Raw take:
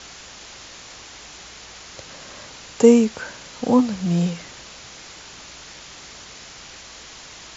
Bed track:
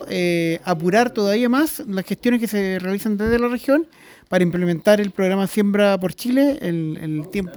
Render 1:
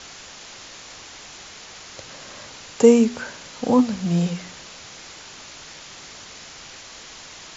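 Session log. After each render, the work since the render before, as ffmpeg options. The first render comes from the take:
-af "bandreject=f=60:t=h:w=4,bandreject=f=120:t=h:w=4,bandreject=f=180:t=h:w=4,bandreject=f=240:t=h:w=4,bandreject=f=300:t=h:w=4,bandreject=f=360:t=h:w=4,bandreject=f=420:t=h:w=4"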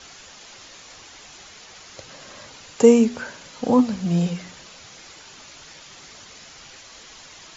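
-af "afftdn=nr=6:nf=-42"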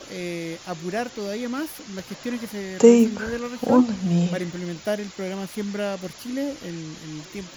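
-filter_complex "[1:a]volume=0.266[s0];[0:a][s0]amix=inputs=2:normalize=0"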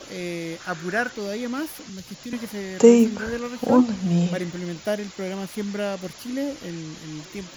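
-filter_complex "[0:a]asettb=1/sr,asplit=3[s0][s1][s2];[s0]atrim=end=0.604[s3];[s1]atrim=start=0.6:end=1.12,asetpts=PTS-STARTPTS,afade=t=in:d=0.004:c=qsin,afade=t=out:st=0.516:d=0.004:c=qsin,equalizer=f=1500:t=o:w=0.45:g=14[s4];[s2]atrim=start=1.116[s5];[s3][s4]acrossfade=d=0.004:c1=hsin:c2=qsin[s6];[s6][s5]acrossfade=d=0.004:c1=qsin:c2=hsin,asettb=1/sr,asplit=3[s7][s8][s9];[s7]atrim=end=1.894[s10];[s8]atrim=start=1.89:end=2.33,asetpts=PTS-STARTPTS,afade=t=in:d=0.004:c=qsin,afade=t=out:st=0.436:d=0.004:c=qsin,acrossover=split=240|3000[s11][s12][s13];[s12]acompressor=threshold=0.00398:ratio=3:attack=3.2:release=140:knee=2.83:detection=peak[s14];[s11][s14][s13]amix=inputs=3:normalize=0[s15];[s9]atrim=start=2.326[s16];[s10][s15]acrossfade=d=0.004:c1=hsin:c2=qsin[s17];[s17][s16]acrossfade=d=0.004:c1=qsin:c2=hsin"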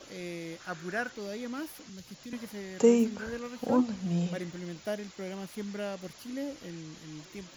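-af "volume=0.355"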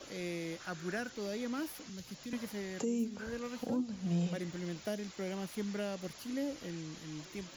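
-filter_complex "[0:a]acrossover=split=400|3000[s0][s1][s2];[s1]acompressor=threshold=0.0112:ratio=6[s3];[s0][s3][s2]amix=inputs=3:normalize=0,alimiter=level_in=1.26:limit=0.0631:level=0:latency=1:release=498,volume=0.794"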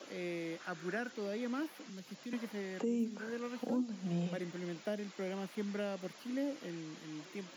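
-filter_complex "[0:a]highpass=f=180:w=0.5412,highpass=f=180:w=1.3066,acrossover=split=3500[s0][s1];[s1]acompressor=threshold=0.00112:ratio=4:attack=1:release=60[s2];[s0][s2]amix=inputs=2:normalize=0"

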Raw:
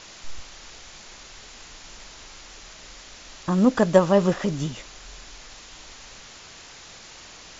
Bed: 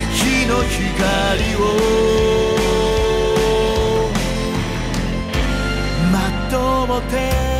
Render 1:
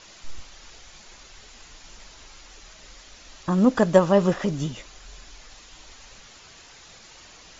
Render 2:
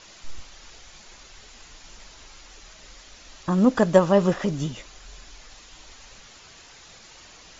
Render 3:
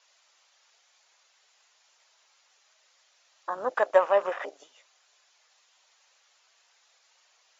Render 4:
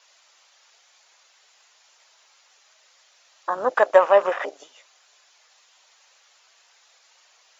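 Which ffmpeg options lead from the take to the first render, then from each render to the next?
-af "afftdn=nr=6:nf=-45"
-af anull
-af "highpass=f=570:w=0.5412,highpass=f=570:w=1.3066,afwtdn=0.0158"
-af "volume=2.24,alimiter=limit=0.794:level=0:latency=1"

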